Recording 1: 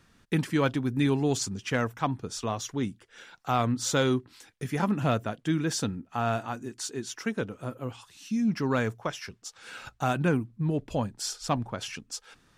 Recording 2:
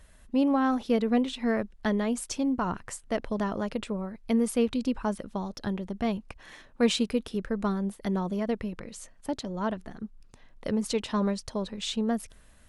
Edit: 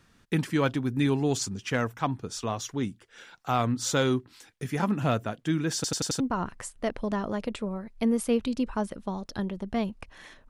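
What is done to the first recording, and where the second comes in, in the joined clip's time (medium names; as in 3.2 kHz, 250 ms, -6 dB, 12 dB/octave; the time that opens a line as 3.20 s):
recording 1
5.75 s: stutter in place 0.09 s, 5 plays
6.20 s: go over to recording 2 from 2.48 s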